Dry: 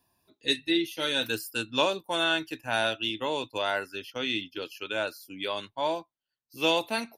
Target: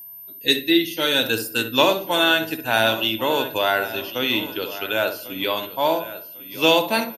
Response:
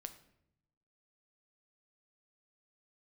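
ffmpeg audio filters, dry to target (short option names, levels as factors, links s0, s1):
-filter_complex "[0:a]aecho=1:1:1097|2194|3291:0.178|0.0533|0.016,asplit=2[s0][s1];[1:a]atrim=start_sample=2205,highshelf=f=2600:g=-12,adelay=63[s2];[s1][s2]afir=irnorm=-1:irlink=0,volume=0.75[s3];[s0][s3]amix=inputs=2:normalize=0,aeval=exprs='val(0)+0.00562*sin(2*PI*13000*n/s)':c=same,volume=2.51"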